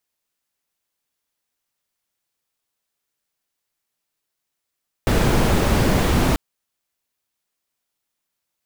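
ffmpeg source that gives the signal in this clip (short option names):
-f lavfi -i "anoisesrc=c=brown:a=0.7:d=1.29:r=44100:seed=1"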